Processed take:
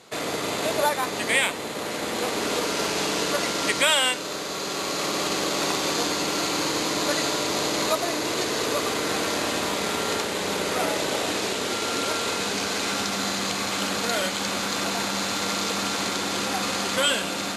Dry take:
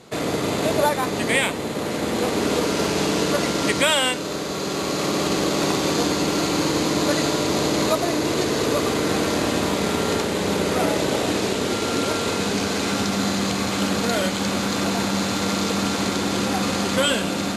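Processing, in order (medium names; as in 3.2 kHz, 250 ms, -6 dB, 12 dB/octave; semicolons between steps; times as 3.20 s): bass shelf 410 Hz -12 dB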